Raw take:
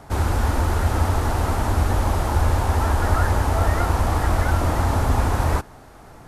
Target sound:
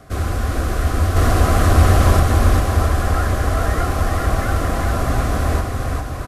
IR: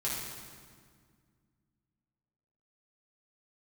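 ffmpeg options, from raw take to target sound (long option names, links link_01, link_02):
-filter_complex "[0:a]asettb=1/sr,asplit=3[link_01][link_02][link_03];[link_01]atrim=end=1.164[link_04];[link_02]atrim=start=1.16:end=2.2,asetpts=PTS-STARTPTS,afade=type=in:duration=0.004:curve=qsin,afade=type=out:start_time=1.036:duration=0.004:curve=qsin,acontrast=78[link_05];[link_03]atrim=start=2.196[link_06];[link_04][link_05]acrossfade=duration=0.004:curve1=hsin:curve2=qsin[link_07];[link_07][link_06]acrossfade=duration=0.004:curve1=qsin:curve2=hsin,asuperstop=centerf=890:order=20:qfactor=5.2,aecho=1:1:400|660|829|938.8|1010:0.631|0.398|0.251|0.158|0.1"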